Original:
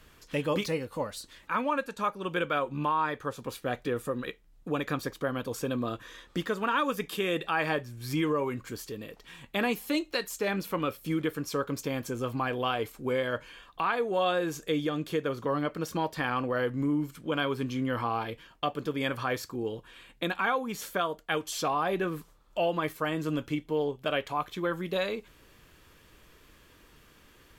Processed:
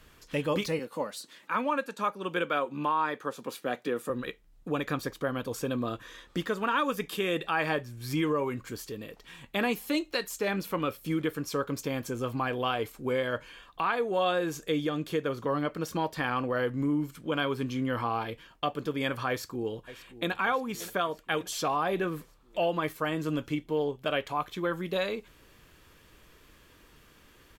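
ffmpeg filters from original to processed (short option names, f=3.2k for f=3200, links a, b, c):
-filter_complex "[0:a]asettb=1/sr,asplit=3[a][b][c];[a]atrim=end=0.794[d];[b]atrim=start=0.79:end=4.1,asetpts=PTS-STARTPTS,afade=t=in:d=0.004:c=qsin,afade=t=out:st=3.306:d=0.004:c=qsin,highpass=f=170:w=0.5412,highpass=f=170:w=1.3066[e];[c]atrim=start=4.096[f];[d][e]acrossfade=d=0.004:c1=hsin:c2=qsin[g];[g][f]acrossfade=d=0.004:c1=qsin:c2=hsin,asplit=2[h][i];[i]afade=t=in:st=19.29:d=0.01,afade=t=out:st=20.31:d=0.01,aecho=0:1:580|1160|1740|2320|2900|3480|4060:0.16788|0.109122|0.0709295|0.0461042|0.0299677|0.019479|0.0126614[j];[h][j]amix=inputs=2:normalize=0"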